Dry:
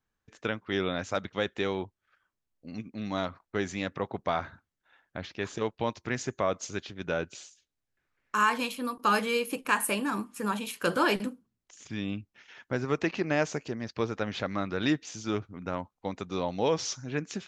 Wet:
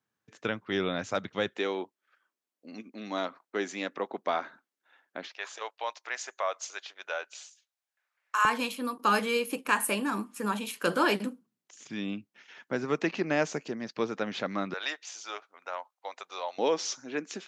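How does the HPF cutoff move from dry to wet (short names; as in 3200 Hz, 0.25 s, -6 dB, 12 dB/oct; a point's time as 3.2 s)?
HPF 24 dB/oct
110 Hz
from 1.57 s 250 Hz
from 5.28 s 630 Hz
from 8.45 s 160 Hz
from 14.74 s 610 Hz
from 16.58 s 250 Hz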